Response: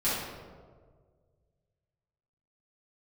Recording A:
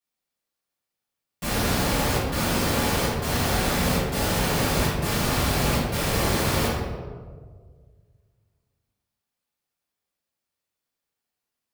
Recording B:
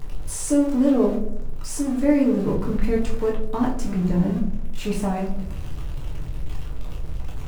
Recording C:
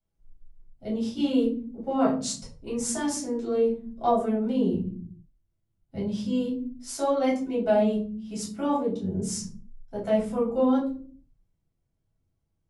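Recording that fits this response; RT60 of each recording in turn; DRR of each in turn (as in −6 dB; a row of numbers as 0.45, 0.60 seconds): A; 1.7, 0.70, 0.50 seconds; −12.0, −3.0, −8.5 decibels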